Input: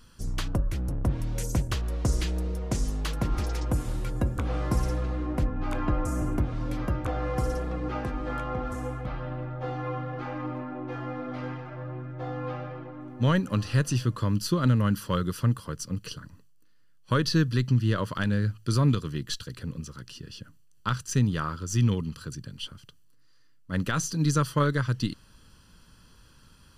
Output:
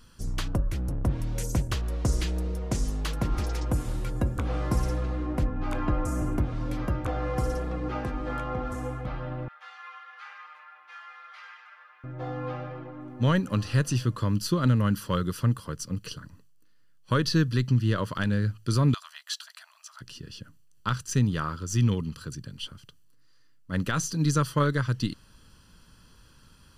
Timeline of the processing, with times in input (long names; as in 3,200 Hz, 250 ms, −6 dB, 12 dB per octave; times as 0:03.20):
0:09.48–0:12.04: high-pass filter 1,300 Hz 24 dB per octave
0:18.94–0:20.01: linear-phase brick-wall high-pass 610 Hz